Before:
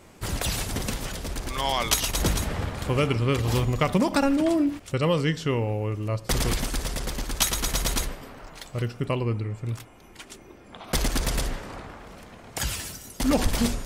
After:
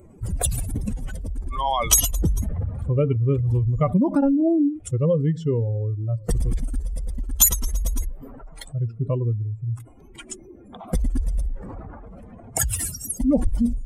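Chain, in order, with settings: spectral contrast raised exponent 2.4; resonant high shelf 6700 Hz +12.5 dB, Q 1.5; record warp 45 rpm, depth 100 cents; gain +3.5 dB

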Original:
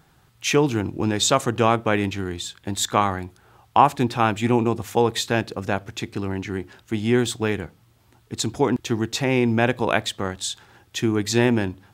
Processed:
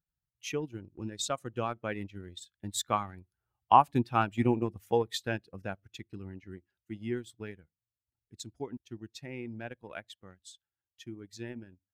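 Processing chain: per-bin expansion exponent 1.5; Doppler pass-by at 4.06, 5 m/s, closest 5.4 m; transient shaper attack +2 dB, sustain -8 dB; gain -4.5 dB

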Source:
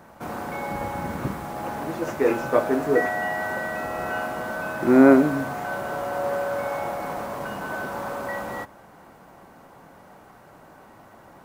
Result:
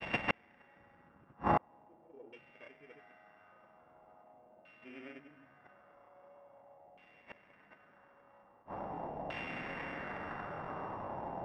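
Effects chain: sample sorter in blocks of 16 samples; in parallel at -2 dB: compressor 8:1, threshold -30 dBFS, peak gain reduction 20 dB; on the sum: grains 78 ms, grains 30/s, pitch spread up and down by 0 st; flipped gate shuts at -21 dBFS, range -38 dB; LFO low-pass saw down 0.43 Hz 710–2700 Hz; gain +2 dB

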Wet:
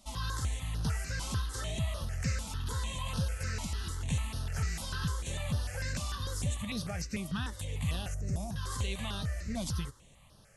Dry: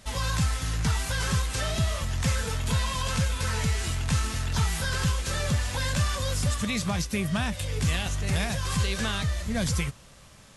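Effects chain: 8.14–8.56 EQ curve 640 Hz 0 dB, 2200 Hz -18 dB, 4100 Hz -16 dB, 6100 Hz -3 dB; step phaser 6.7 Hz 450–7400 Hz; gain -6 dB

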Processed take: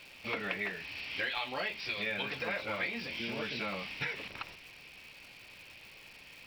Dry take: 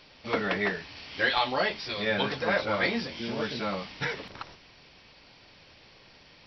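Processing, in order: bell 2500 Hz +13 dB 0.59 oct; compressor 4:1, threshold -29 dBFS, peak gain reduction 11.5 dB; crackle 400/s -42 dBFS; gain -4.5 dB

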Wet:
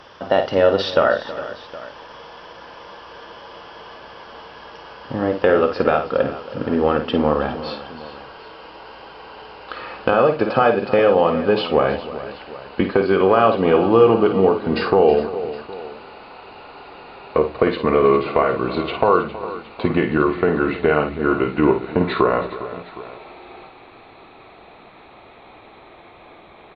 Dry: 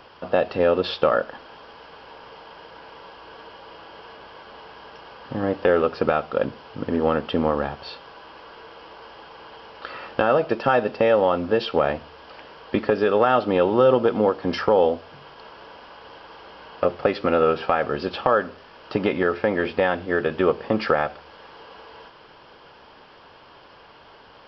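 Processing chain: speed glide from 107% -> 76%; tapped delay 53/320/409/765 ms -8/-16/-15/-19 dB; gain +3 dB

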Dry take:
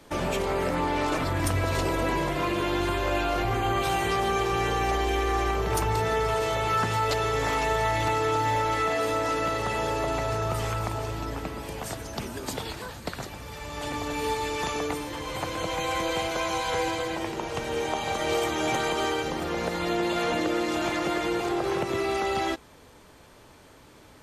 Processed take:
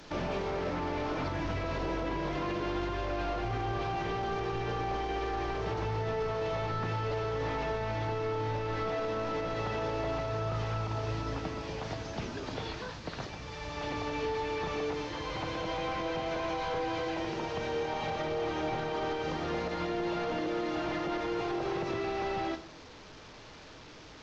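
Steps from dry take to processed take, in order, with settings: delta modulation 32 kbps, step -41.5 dBFS; shoebox room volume 500 m³, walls furnished, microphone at 0.54 m; limiter -22 dBFS, peak gain reduction 7 dB; gain -3 dB

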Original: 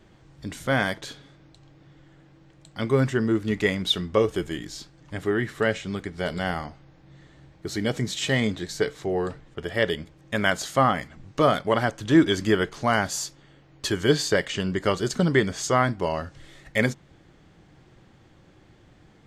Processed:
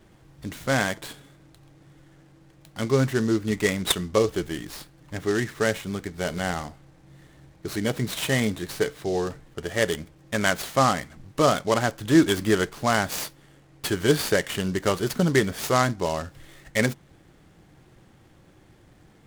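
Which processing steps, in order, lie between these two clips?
noise-modulated delay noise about 4700 Hz, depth 0.034 ms

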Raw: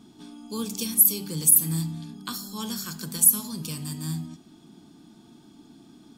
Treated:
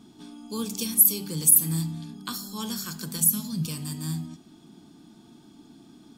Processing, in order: 3.2–3.66 fifteen-band EQ 160 Hz +10 dB, 400 Hz -7 dB, 1000 Hz -7 dB, 10000 Hz -5 dB

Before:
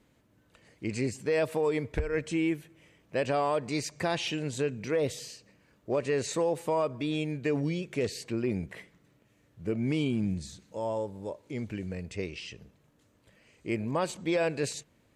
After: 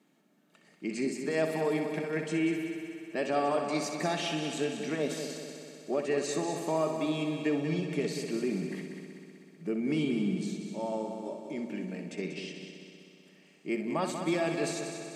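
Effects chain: elliptic high-pass 160 Hz; notch comb 500 Hz; multi-head echo 63 ms, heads first and third, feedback 72%, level -9 dB

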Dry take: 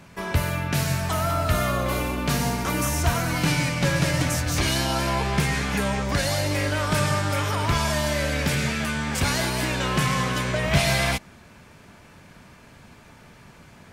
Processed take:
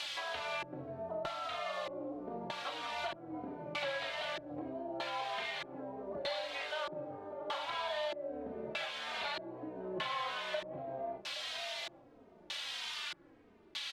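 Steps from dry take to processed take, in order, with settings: resonant high shelf 5400 Hz -9.5 dB, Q 3; notches 50/100/150/200/250/300/350/400/450/500 Hz; doubler 38 ms -7.5 dB; band-pass sweep 660 Hz -> 5100 Hz, 12.66–13.89; on a send: echo 0.822 s -20.5 dB; on the sum: requantised 8-bit, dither triangular; tilt shelf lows -9.5 dB, about 710 Hz; LFO low-pass square 0.8 Hz 330–3500 Hz; compressor 4:1, threshold -42 dBFS, peak gain reduction 15 dB; endless flanger 3 ms -1.6 Hz; gain +6.5 dB

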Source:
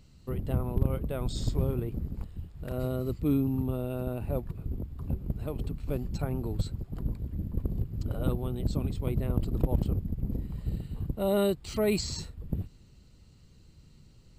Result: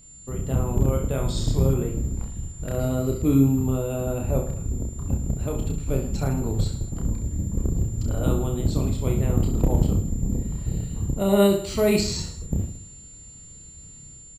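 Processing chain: AGC gain up to 5 dB; whine 7200 Hz -51 dBFS; reverse bouncing-ball echo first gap 30 ms, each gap 1.2×, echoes 5

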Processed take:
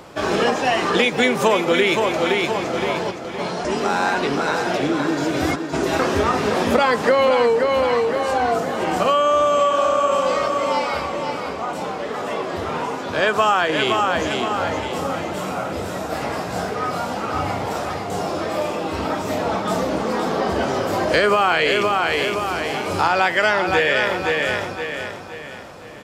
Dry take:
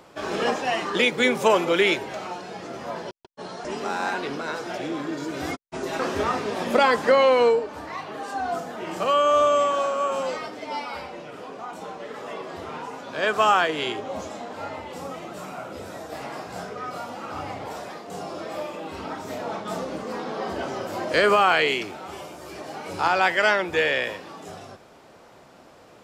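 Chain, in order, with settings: bell 69 Hz +5 dB 2.2 oct; feedback echo 0.517 s, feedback 40%, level -7 dB; compressor 3:1, threshold -24 dBFS, peak gain reduction 8.5 dB; gain +8.5 dB

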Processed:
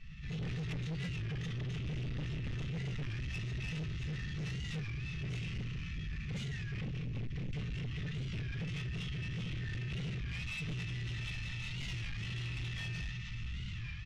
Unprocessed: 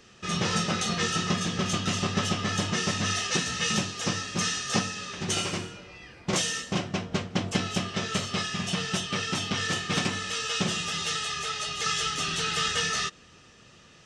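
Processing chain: octaver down 1 oct, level -4 dB; compressor 2.5:1, threshold -47 dBFS, peak gain reduction 17.5 dB; inverse Chebyshev band-stop 450–1100 Hz, stop band 50 dB; shoebox room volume 240 m³, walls furnished, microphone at 5.3 m; formant-preserving pitch shift -6 st; LPF 2000 Hz 12 dB/oct; comb 4.6 ms, depth 32%; on a send: diffused feedback echo 1.288 s, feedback 54%, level -12 dB; on the sum: soft clip -39 dBFS, distortion -9 dB; AGC gain up to 14 dB; limiter -35.5 dBFS, peak gain reduction 10.5 dB; record warp 33 1/3 rpm, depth 160 cents

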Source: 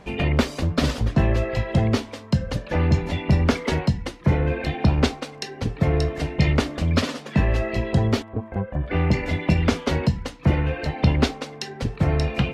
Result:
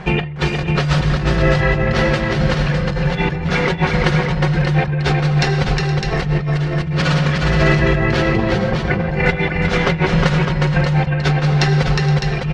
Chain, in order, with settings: limiter -16 dBFS, peak gain reduction 10 dB; Bessel low-pass 4600 Hz, order 2; bell 150 Hz +13 dB 0.29 oct; notch 580 Hz, Q 12; comb 5.5 ms, depth 44%; reverb RT60 1.7 s, pre-delay 40 ms, DRR 8.5 dB; negative-ratio compressor -26 dBFS, ratio -1; fifteen-band EQ 100 Hz -4 dB, 250 Hz -7 dB, 1600 Hz +5 dB; tapped delay 0.36/0.469/0.606 s -4/-14/-5.5 dB; gain +7.5 dB

